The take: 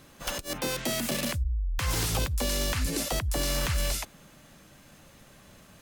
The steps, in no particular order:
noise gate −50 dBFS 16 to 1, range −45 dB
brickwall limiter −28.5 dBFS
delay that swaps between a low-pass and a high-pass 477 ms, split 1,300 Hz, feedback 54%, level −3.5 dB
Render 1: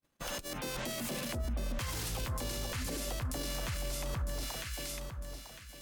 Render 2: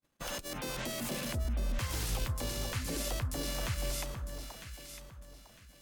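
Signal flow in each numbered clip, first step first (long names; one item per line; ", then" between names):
noise gate, then delay that swaps between a low-pass and a high-pass, then brickwall limiter
noise gate, then brickwall limiter, then delay that swaps between a low-pass and a high-pass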